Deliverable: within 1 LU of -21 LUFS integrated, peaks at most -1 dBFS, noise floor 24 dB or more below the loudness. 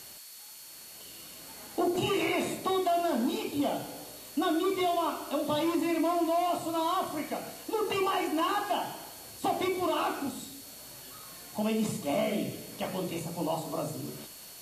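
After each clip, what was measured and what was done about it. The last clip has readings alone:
steady tone 4400 Hz; tone level -54 dBFS; noise floor -48 dBFS; noise floor target -55 dBFS; loudness -31.0 LUFS; peak -18.0 dBFS; loudness target -21.0 LUFS
-> notch 4400 Hz, Q 30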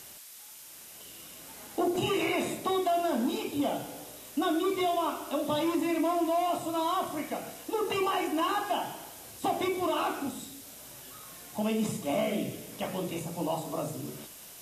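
steady tone none; noise floor -49 dBFS; noise floor target -55 dBFS
-> denoiser 6 dB, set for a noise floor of -49 dBFS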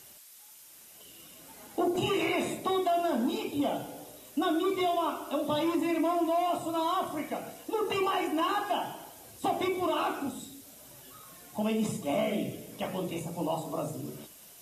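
noise floor -53 dBFS; noise floor target -55 dBFS
-> denoiser 6 dB, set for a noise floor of -53 dBFS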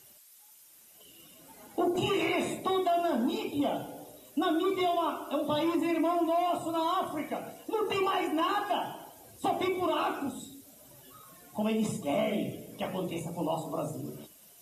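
noise floor -57 dBFS; loudness -31.0 LUFS; peak -18.5 dBFS; loudness target -21.0 LUFS
-> gain +10 dB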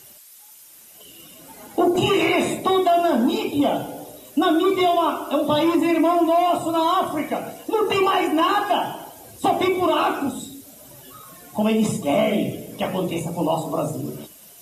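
loudness -21.0 LUFS; peak -8.5 dBFS; noise floor -47 dBFS

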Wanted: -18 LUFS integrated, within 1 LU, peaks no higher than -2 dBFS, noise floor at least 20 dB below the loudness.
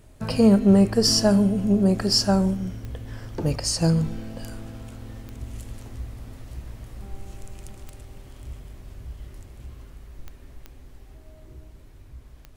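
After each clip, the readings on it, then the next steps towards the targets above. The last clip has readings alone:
clicks 6; loudness -20.5 LUFS; peak -6.0 dBFS; loudness target -18.0 LUFS
-> de-click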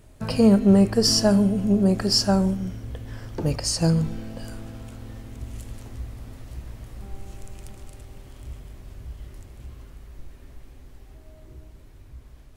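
clicks 0; loudness -20.5 LUFS; peak -6.0 dBFS; loudness target -18.0 LUFS
-> gain +2.5 dB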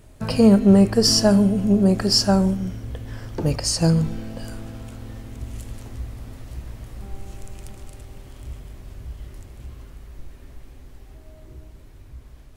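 loudness -18.0 LUFS; peak -3.5 dBFS; noise floor -45 dBFS

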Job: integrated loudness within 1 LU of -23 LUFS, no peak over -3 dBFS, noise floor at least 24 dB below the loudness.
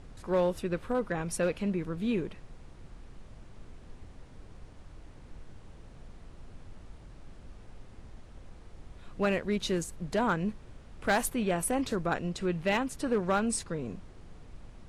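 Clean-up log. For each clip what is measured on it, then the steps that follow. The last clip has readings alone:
clipped 0.3%; flat tops at -20.0 dBFS; noise floor -51 dBFS; noise floor target -55 dBFS; loudness -31.0 LUFS; peak -20.0 dBFS; loudness target -23.0 LUFS
-> clip repair -20 dBFS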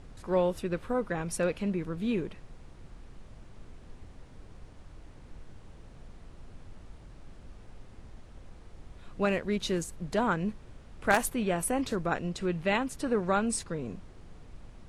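clipped 0.0%; noise floor -51 dBFS; noise floor target -55 dBFS
-> noise print and reduce 6 dB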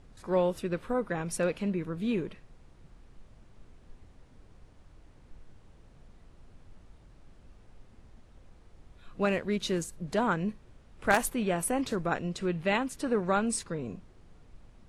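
noise floor -57 dBFS; loudness -30.5 LUFS; peak -11.0 dBFS; loudness target -23.0 LUFS
-> gain +7.5 dB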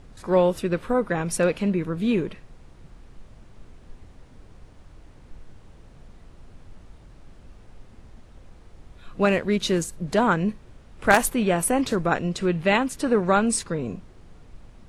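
loudness -23.0 LUFS; peak -3.5 dBFS; noise floor -50 dBFS

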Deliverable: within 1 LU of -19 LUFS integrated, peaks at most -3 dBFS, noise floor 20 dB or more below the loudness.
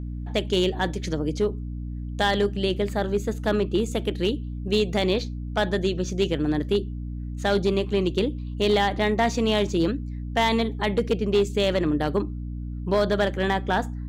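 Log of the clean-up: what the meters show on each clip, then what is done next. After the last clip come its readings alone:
clipped 0.7%; flat tops at -14.5 dBFS; hum 60 Hz; harmonics up to 300 Hz; hum level -30 dBFS; loudness -25.0 LUFS; peak -14.5 dBFS; loudness target -19.0 LUFS
-> clip repair -14.5 dBFS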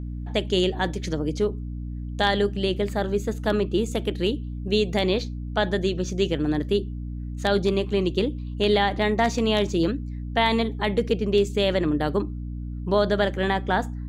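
clipped 0.0%; hum 60 Hz; harmonics up to 300 Hz; hum level -29 dBFS
-> de-hum 60 Hz, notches 5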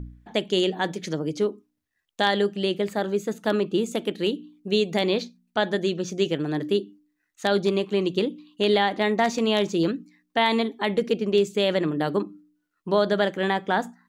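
hum none; loudness -25.0 LUFS; peak -6.5 dBFS; loudness target -19.0 LUFS
-> gain +6 dB; limiter -3 dBFS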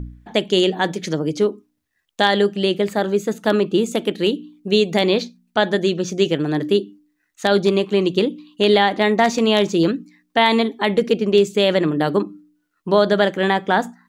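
loudness -19.0 LUFS; peak -3.0 dBFS; noise floor -71 dBFS

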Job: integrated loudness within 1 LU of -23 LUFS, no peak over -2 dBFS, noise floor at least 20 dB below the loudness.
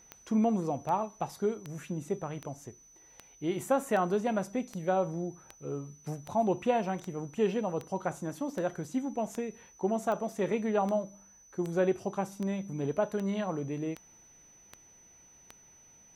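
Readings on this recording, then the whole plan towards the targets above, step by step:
clicks 21; steady tone 6000 Hz; tone level -56 dBFS; loudness -32.5 LUFS; peak -15.5 dBFS; loudness target -23.0 LUFS
-> de-click; notch 6000 Hz, Q 30; gain +9.5 dB

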